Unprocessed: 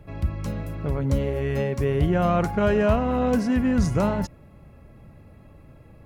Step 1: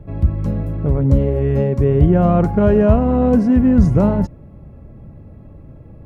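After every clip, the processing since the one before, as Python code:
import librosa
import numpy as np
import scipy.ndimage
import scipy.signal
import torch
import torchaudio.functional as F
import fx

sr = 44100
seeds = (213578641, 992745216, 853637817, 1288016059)

y = fx.tilt_shelf(x, sr, db=9.0, hz=1100.0)
y = y * 10.0 ** (1.0 / 20.0)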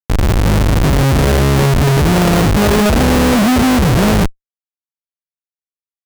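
y = fx.lowpass(x, sr, hz=1600.0, slope=6)
y = fx.schmitt(y, sr, flips_db=-21.5)
y = y * 10.0 ** (5.0 / 20.0)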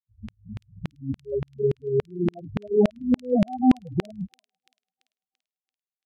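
y = fx.spec_topn(x, sr, count=4)
y = fx.filter_lfo_highpass(y, sr, shape='saw_down', hz=3.5, low_hz=270.0, high_hz=2700.0, q=1.4)
y = fx.echo_wet_highpass(y, sr, ms=338, feedback_pct=43, hz=4800.0, wet_db=-7.5)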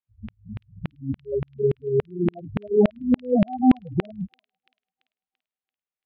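y = scipy.signal.sosfilt(scipy.signal.butter(4, 3300.0, 'lowpass', fs=sr, output='sos'), x)
y = y * 10.0 ** (1.5 / 20.0)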